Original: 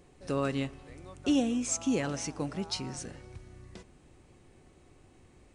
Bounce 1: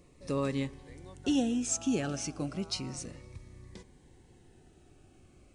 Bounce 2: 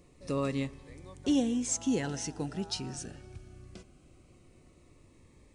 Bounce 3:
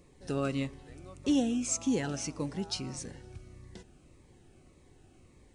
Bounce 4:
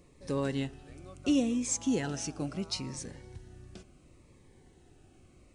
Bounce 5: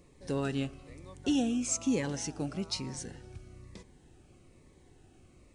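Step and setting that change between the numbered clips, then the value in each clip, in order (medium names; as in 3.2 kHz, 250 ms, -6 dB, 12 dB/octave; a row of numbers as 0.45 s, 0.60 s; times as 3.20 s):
Shepard-style phaser, rate: 0.33 Hz, 0.21 Hz, 1.7 Hz, 0.72 Hz, 1.1 Hz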